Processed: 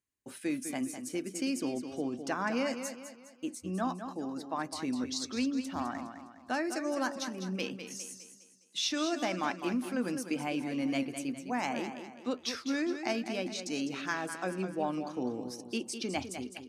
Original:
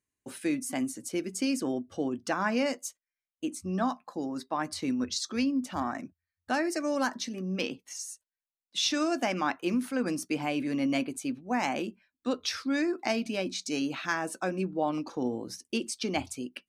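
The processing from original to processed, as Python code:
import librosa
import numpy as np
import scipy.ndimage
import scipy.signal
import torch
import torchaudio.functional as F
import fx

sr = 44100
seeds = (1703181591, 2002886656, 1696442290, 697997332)

y = fx.peak_eq(x, sr, hz=11000.0, db=7.5, octaves=0.34, at=(7.18, 8.02))
y = fx.echo_warbled(y, sr, ms=205, feedback_pct=42, rate_hz=2.8, cents=75, wet_db=-9.0)
y = y * librosa.db_to_amplitude(-4.0)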